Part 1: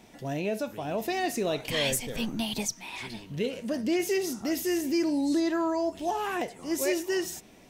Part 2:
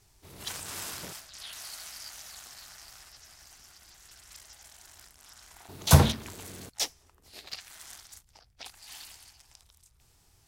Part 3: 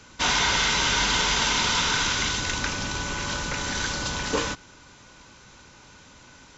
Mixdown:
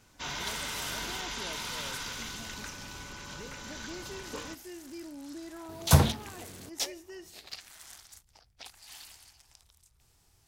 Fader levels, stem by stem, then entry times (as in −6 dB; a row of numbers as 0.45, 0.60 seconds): −17.5, −2.5, −15.0 decibels; 0.00, 0.00, 0.00 seconds